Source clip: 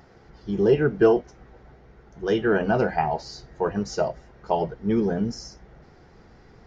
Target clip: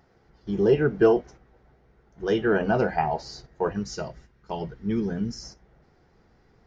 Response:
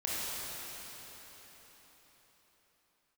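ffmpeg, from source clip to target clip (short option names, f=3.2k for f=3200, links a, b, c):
-filter_complex "[0:a]agate=range=-8dB:threshold=-43dB:ratio=16:detection=peak,asettb=1/sr,asplit=3[a][b][c];[a]atrim=end=3.734[d];[b]atrim=start=3.73:end=5.43,asetpts=PTS-STARTPTS,afade=t=in:d=0.004:c=qsin,afade=t=out:st=1.696:d=0.004:c=qsin,equalizer=f=650:t=o:w=1.5:g=-10.5[e];[c]atrim=start=5.426[f];[d][e]acrossfade=d=0.004:c1=hsin:c2=qsin[g];[g][f]acrossfade=d=0.004:c1=qsin:c2=hsin,volume=-1dB"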